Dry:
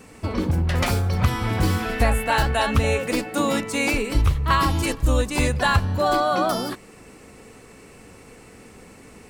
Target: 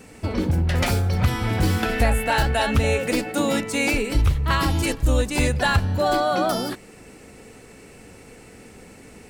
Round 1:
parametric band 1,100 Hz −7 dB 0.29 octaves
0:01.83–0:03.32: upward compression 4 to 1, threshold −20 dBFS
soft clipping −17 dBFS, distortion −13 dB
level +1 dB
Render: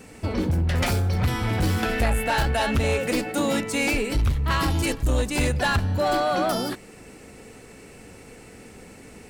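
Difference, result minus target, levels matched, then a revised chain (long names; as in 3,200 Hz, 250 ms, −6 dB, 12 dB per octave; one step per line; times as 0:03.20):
soft clipping: distortion +12 dB
parametric band 1,100 Hz −7 dB 0.29 octaves
0:01.83–0:03.32: upward compression 4 to 1, threshold −20 dBFS
soft clipping −8 dBFS, distortion −26 dB
level +1 dB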